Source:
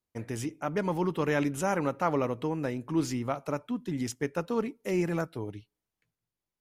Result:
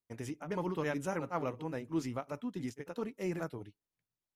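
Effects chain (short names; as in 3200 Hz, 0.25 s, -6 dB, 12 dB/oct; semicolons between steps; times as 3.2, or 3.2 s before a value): granular stretch 0.66×, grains 0.197 s; gain -6 dB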